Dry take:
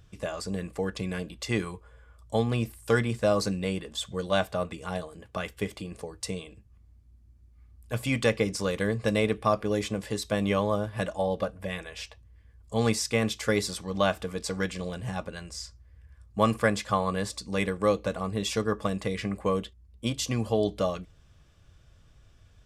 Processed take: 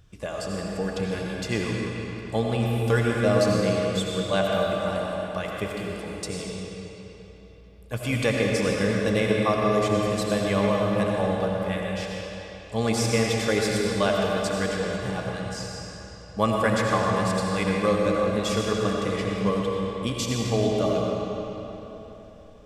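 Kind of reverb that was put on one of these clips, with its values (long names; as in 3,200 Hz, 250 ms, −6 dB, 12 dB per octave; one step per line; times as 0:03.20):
comb and all-pass reverb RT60 3.7 s, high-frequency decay 0.8×, pre-delay 45 ms, DRR −2 dB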